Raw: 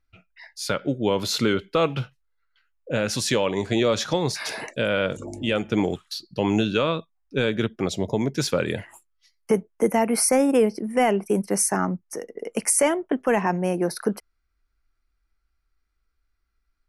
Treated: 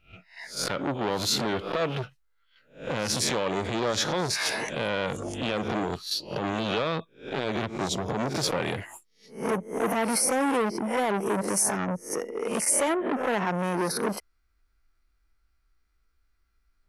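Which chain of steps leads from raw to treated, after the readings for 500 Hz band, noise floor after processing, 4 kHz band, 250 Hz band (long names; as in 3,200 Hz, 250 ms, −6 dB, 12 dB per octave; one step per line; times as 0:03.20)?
−5.5 dB, −70 dBFS, −1.0 dB, −5.5 dB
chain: peak hold with a rise ahead of every peak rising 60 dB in 0.34 s
brickwall limiter −16 dBFS, peak gain reduction 10.5 dB
saturating transformer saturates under 910 Hz
level +2 dB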